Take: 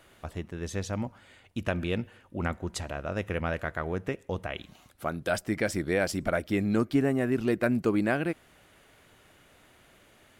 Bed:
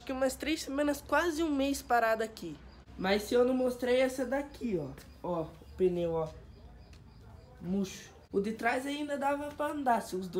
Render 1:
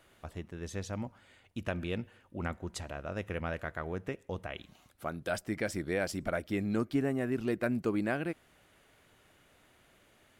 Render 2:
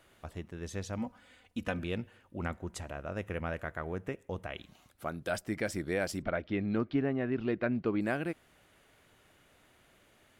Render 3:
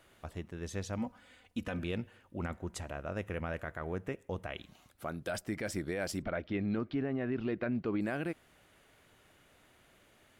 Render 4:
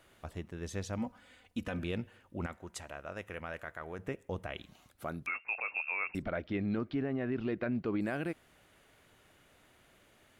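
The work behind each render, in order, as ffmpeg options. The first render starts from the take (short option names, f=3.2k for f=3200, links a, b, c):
-af "volume=-5.5dB"
-filter_complex "[0:a]asettb=1/sr,asplit=3[a][b][c];[a]atrim=end=0.984[d];[b]atrim=start=0.98:end=1.79,asetpts=PTS-STARTPTS,afade=t=in:d=0.004:c=qsin,afade=t=out:st=0.806:d=0.004:c=qsin,aecho=1:1:4:0.65,atrim=end_sample=35721[e];[c]atrim=start=1.786[f];[d][e]acrossfade=d=0.004:c1=hsin:c2=qsin[g];[g][f]acrossfade=d=0.004:c1=qsin:c2=hsin,asettb=1/sr,asplit=3[h][i][j];[h]atrim=end=2.624[k];[i]atrim=start=2.62:end=4.44,asetpts=PTS-STARTPTS,afade=t=in:d=0.004:c=qsin,afade=t=out:st=1.816:d=0.004:c=qsin,equalizer=f=4.3k:w=1.5:g=-5[l];[j]atrim=start=4.436[m];[k][l]acrossfade=d=0.004:c1=hsin:c2=qsin[n];[n][m]acrossfade=d=0.004:c1=qsin:c2=hsin,asettb=1/sr,asplit=3[o][p][q];[o]atrim=end=6.224[r];[p]atrim=start=6.22:end=8.01,asetpts=PTS-STARTPTS,afade=t=in:d=0.004:c=qsin,afade=t=out:st=1.786:d=0.004:c=qsin,lowpass=f=4k:w=0.5412,lowpass=f=4k:w=1.3066[s];[q]atrim=start=8.006[t];[r][s]acrossfade=d=0.004:c1=hsin:c2=qsin[u];[u][t]acrossfade=d=0.004:c1=qsin:c2=hsin"
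-af "alimiter=level_in=1.5dB:limit=-24dB:level=0:latency=1:release=27,volume=-1.5dB"
-filter_complex "[0:a]asettb=1/sr,asplit=3[a][b][c];[a]atrim=end=2.464[d];[b]atrim=start=2.46:end=3.99,asetpts=PTS-STARTPTS,afade=t=in:d=0.004:c=qsin,afade=t=out:st=1.526:d=0.004:c=qsin,lowshelf=f=470:g=-10[e];[c]atrim=start=3.986[f];[d][e]acrossfade=d=0.004:c1=hsin:c2=qsin[g];[g][f]acrossfade=d=0.004:c1=qsin:c2=hsin,asettb=1/sr,asplit=3[h][i][j];[h]atrim=end=5.264[k];[i]atrim=start=5.26:end=6.15,asetpts=PTS-STARTPTS,afade=t=in:d=0.004:c=qsin,afade=t=out:st=0.886:d=0.004:c=qsin,lowpass=f=2.4k:t=q:w=0.5098,lowpass=f=2.4k:t=q:w=0.6013,lowpass=f=2.4k:t=q:w=0.9,lowpass=f=2.4k:t=q:w=2.563,afreqshift=-2800[l];[j]atrim=start=6.146[m];[k][l]acrossfade=d=0.004:c1=hsin:c2=qsin[n];[n][m]acrossfade=d=0.004:c1=qsin:c2=hsin"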